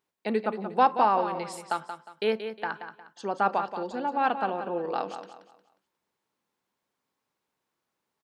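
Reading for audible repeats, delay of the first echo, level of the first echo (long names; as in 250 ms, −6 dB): 3, 179 ms, −9.5 dB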